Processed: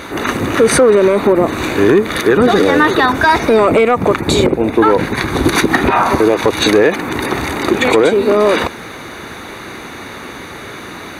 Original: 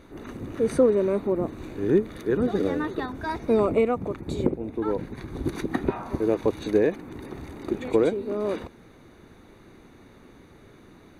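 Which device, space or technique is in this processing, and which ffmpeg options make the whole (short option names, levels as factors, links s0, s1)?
mastering chain: -af "highpass=52,equalizer=f=1100:t=o:w=2.9:g=4,acompressor=threshold=0.0891:ratio=3,asoftclip=type=tanh:threshold=0.178,tiltshelf=f=830:g=-6,asoftclip=type=hard:threshold=0.126,alimiter=level_in=13.3:limit=0.891:release=50:level=0:latency=1,volume=0.891"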